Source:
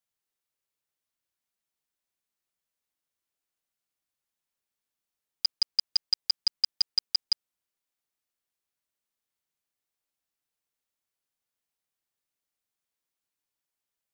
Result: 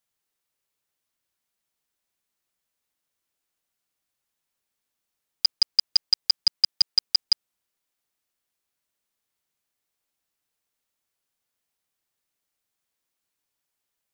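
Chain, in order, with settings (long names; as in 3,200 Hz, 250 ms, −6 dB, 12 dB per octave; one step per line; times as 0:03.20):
0:06.44–0:06.95: low-shelf EQ 150 Hz −10 dB
level +5.5 dB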